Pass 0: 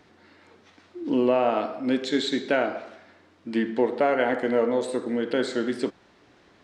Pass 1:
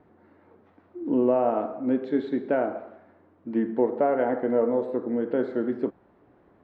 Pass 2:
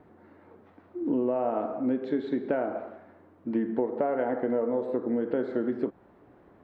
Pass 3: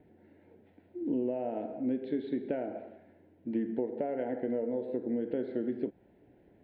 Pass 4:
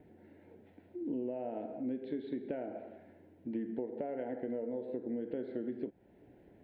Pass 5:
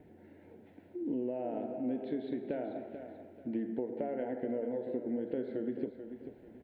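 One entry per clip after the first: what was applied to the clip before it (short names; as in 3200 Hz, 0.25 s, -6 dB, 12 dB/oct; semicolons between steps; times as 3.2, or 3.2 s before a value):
LPF 1000 Hz 12 dB/oct
compressor 4:1, threshold -27 dBFS, peak gain reduction 9 dB; gain +2.5 dB
fixed phaser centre 2800 Hz, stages 4; gain -3.5 dB
compressor 1.5:1, threshold -48 dBFS, peak gain reduction 7.5 dB; gain +1.5 dB
feedback echo 0.438 s, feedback 32%, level -10 dB; gain +2 dB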